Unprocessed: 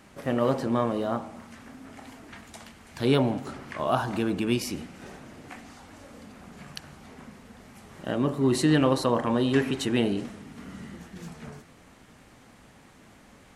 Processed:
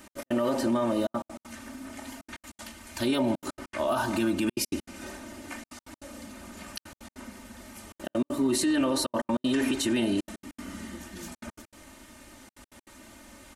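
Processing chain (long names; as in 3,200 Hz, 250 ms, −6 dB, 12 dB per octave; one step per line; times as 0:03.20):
high-shelf EQ 5,800 Hz +10.5 dB
comb filter 3.3 ms, depth 88%
brickwall limiter −18 dBFS, peak gain reduction 10 dB
gate pattern "x.x.xxxxxxxxxx." 197 BPM −60 dB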